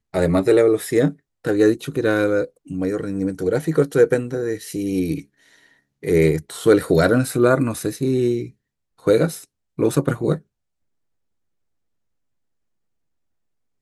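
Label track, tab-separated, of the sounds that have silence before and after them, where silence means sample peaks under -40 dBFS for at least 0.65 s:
6.030000	10.390000	sound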